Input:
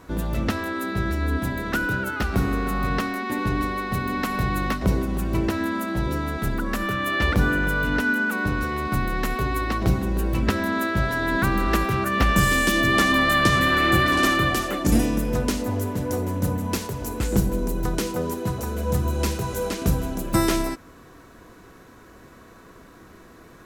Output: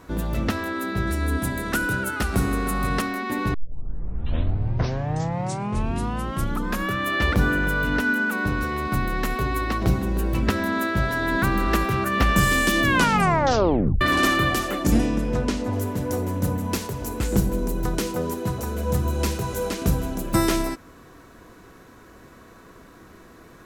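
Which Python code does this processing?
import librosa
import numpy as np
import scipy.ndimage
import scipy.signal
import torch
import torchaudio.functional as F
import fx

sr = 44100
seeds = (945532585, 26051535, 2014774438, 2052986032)

y = fx.peak_eq(x, sr, hz=9400.0, db=11.0, octaves=0.89, at=(1.07, 3.02))
y = fx.air_absorb(y, sr, metres=64.0, at=(14.92, 15.73))
y = fx.edit(y, sr, fx.tape_start(start_s=3.54, length_s=3.43),
    fx.tape_stop(start_s=12.83, length_s=1.18), tone=tone)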